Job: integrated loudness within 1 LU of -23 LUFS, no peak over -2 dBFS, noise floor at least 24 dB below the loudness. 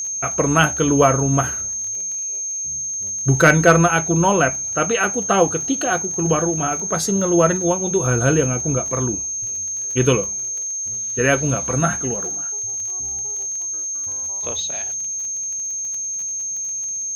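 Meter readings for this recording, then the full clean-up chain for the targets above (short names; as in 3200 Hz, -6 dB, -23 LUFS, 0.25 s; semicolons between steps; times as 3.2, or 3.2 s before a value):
ticks 26/s; steady tone 6400 Hz; tone level -23 dBFS; loudness -19.0 LUFS; peak -2.0 dBFS; loudness target -23.0 LUFS
-> de-click; notch 6400 Hz, Q 30; gain -4 dB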